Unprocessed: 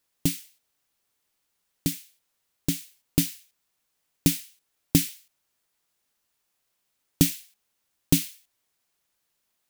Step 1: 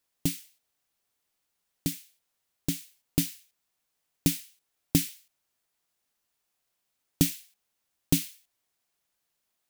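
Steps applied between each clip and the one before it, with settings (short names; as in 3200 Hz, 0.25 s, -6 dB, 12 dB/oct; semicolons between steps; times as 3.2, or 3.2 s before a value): bell 710 Hz +3 dB 0.24 oct; gain -3.5 dB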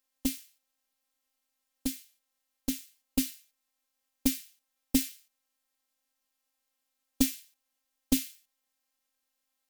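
robotiser 264 Hz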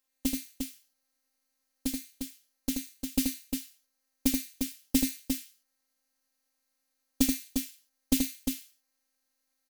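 tapped delay 80/352 ms -4.5/-5.5 dB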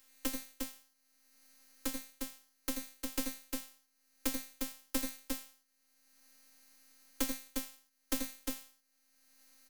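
Chebyshev high-pass 210 Hz, order 10; half-wave rectifier; three-band squash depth 70%; gain -2.5 dB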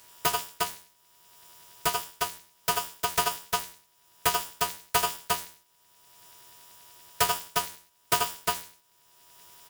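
in parallel at -8 dB: wrapped overs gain 28.5 dB; on the sum: small resonant body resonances 600/850 Hz, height 13 dB, ringing for 70 ms; polarity switched at an audio rate 970 Hz; gain +8 dB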